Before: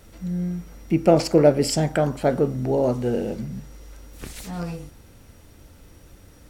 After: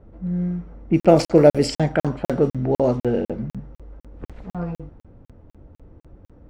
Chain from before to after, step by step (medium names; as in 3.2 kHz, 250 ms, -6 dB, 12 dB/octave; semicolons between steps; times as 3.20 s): level-controlled noise filter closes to 720 Hz, open at -12.5 dBFS; crackling interface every 0.25 s, samples 2048, zero, from 1.00 s; trim +2.5 dB